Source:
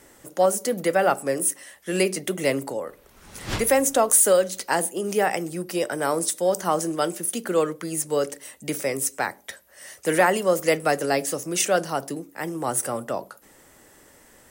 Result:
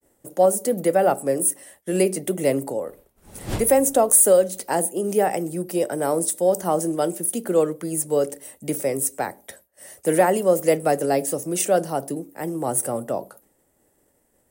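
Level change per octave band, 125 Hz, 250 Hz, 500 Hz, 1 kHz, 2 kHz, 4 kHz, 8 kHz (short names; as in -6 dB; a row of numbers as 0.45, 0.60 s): +3.0, +3.0, +3.0, +0.5, -6.0, -6.0, +1.5 dB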